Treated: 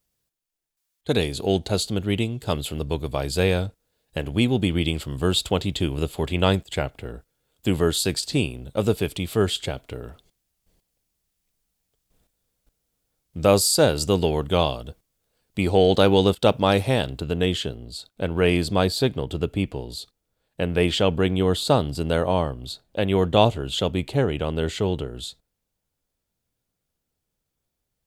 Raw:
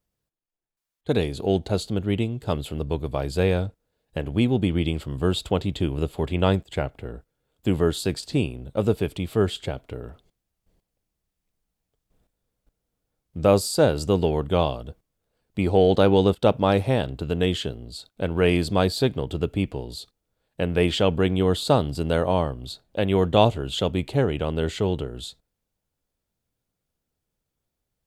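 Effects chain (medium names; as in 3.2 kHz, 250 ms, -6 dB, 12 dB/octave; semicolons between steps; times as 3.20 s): treble shelf 2.4 kHz +9.5 dB, from 17.20 s +3 dB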